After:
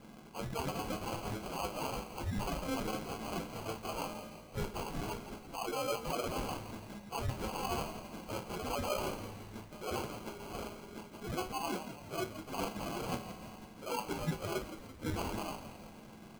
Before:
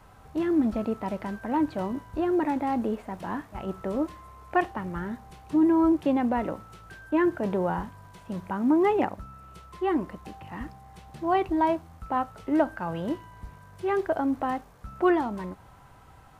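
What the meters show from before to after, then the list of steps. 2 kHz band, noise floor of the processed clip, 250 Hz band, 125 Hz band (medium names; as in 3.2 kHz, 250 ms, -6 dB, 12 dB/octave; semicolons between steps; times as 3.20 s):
-8.0 dB, -53 dBFS, -16.0 dB, -2.5 dB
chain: spectrum inverted on a logarithmic axis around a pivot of 1.6 kHz; reverse; compression 4:1, threshold -39 dBFS, peak gain reduction 15.5 dB; reverse; bass shelf 270 Hz +7.5 dB; feedback comb 110 Hz, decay 0.23 s, harmonics all, mix 90%; sample-and-hold 24×; frequency-shifting echo 168 ms, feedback 55%, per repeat -58 Hz, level -11 dB; trim +11 dB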